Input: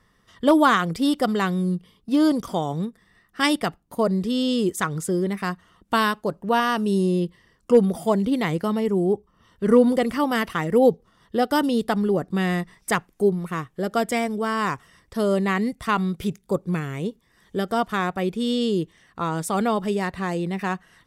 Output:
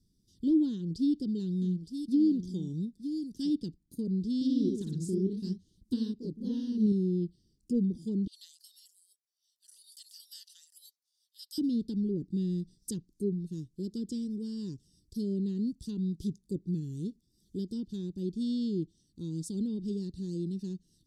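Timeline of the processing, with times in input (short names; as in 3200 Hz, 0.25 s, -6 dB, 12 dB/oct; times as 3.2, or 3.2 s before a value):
0.7–3.5 echo 0.915 s -10 dB
4.33–6.99 echoes that change speed 82 ms, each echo +1 st, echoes 2
8.27–11.58 steep high-pass 1400 Hz
whole clip: treble ducked by the level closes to 2600 Hz, closed at -16.5 dBFS; elliptic band-stop 330–4400 Hz, stop band 40 dB; gain -6 dB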